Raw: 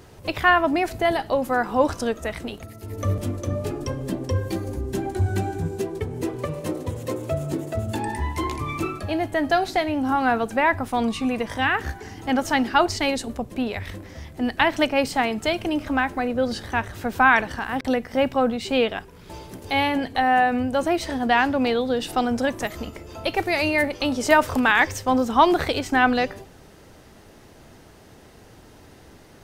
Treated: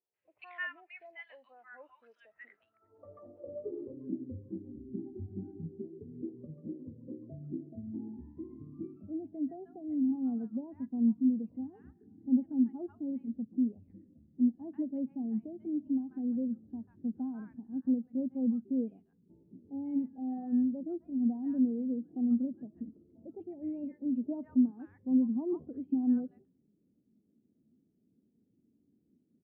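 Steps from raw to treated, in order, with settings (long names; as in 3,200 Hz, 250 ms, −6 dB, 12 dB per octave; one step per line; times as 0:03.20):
tilt shelving filter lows +3.5 dB, about 1,500 Hz
in parallel at −0.5 dB: downward compressor, threshold −26 dBFS, peak gain reduction 16 dB
on the sum: band-pass filter sweep 2,400 Hz → 230 Hz, 0:02.07–0:04.31
three-band delay without the direct sound lows, mids, highs 140/190 ms, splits 990/4,700 Hz
every bin expanded away from the loudest bin 1.5 to 1
level −7 dB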